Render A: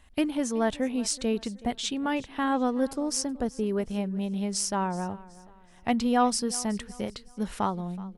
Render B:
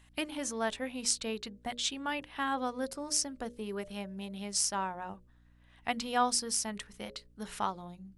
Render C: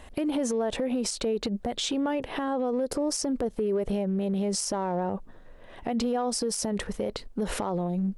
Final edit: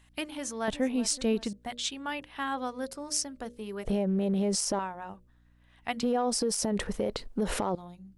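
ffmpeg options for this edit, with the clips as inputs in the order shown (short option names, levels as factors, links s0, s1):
-filter_complex "[2:a]asplit=2[s0][s1];[1:a]asplit=4[s2][s3][s4][s5];[s2]atrim=end=0.682[s6];[0:a]atrim=start=0.678:end=1.532[s7];[s3]atrim=start=1.528:end=3.852[s8];[s0]atrim=start=3.848:end=4.792[s9];[s4]atrim=start=4.788:end=6.032[s10];[s1]atrim=start=6.028:end=7.752[s11];[s5]atrim=start=7.748[s12];[s6][s7]acrossfade=d=0.004:c1=hsin:c2=hsin[s13];[s13][s8]acrossfade=d=0.004:c1=hsin:c2=hsin[s14];[s14][s9]acrossfade=d=0.004:c1=hsin:c2=hsin[s15];[s15][s10]acrossfade=d=0.004:c1=hsin:c2=hsin[s16];[s16][s11]acrossfade=d=0.004:c1=hsin:c2=hsin[s17];[s17][s12]acrossfade=d=0.004:c1=hsin:c2=hsin"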